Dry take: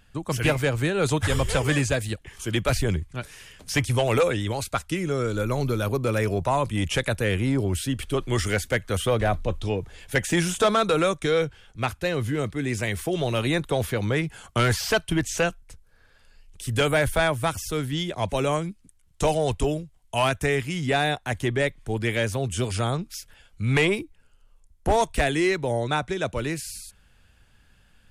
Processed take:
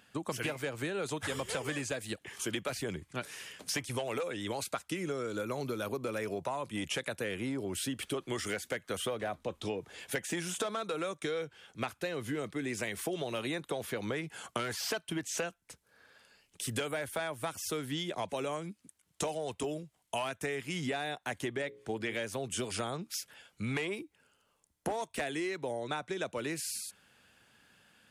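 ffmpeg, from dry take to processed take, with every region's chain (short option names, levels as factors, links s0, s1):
-filter_complex "[0:a]asettb=1/sr,asplit=3[s0][s1][s2];[s0]atrim=end=21.624[s3];[s1]atrim=start=21.62:end=22.15,asetpts=PTS-STARTPTS,afade=t=in:d=0.004:c=qsin,afade=t=out:st=0.526:d=0.004:c=qsin,acrossover=split=7100[s4][s5];[s5]acompressor=threshold=0.00112:ratio=4:attack=1:release=60[s6];[s4][s6]amix=inputs=2:normalize=0,bandreject=f=60:t=h:w=6,bandreject=f=120:t=h:w=6,bandreject=f=180:t=h:w=6,bandreject=f=240:t=h:w=6,bandreject=f=300:t=h:w=6,bandreject=f=360:t=h:w=6,bandreject=f=420:t=h:w=6,bandreject=f=480:t=h:w=6,bandreject=f=540:t=h:w=6[s7];[s2]atrim=start=22.146[s8];[s3][s7]acrossfade=d=0.004:c1=hsin:c2=qsin[s9];[s9][s8]acrossfade=d=0.004:c1=qsin:c2=hsin,highpass=210,acompressor=threshold=0.0251:ratio=12"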